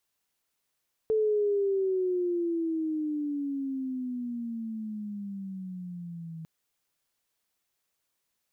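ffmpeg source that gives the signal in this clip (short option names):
-f lavfi -i "aevalsrc='pow(10,(-22-15.5*t/5.35)/20)*sin(2*PI*440*5.35/(-17.5*log(2)/12)*(exp(-17.5*log(2)/12*t/5.35)-1))':d=5.35:s=44100"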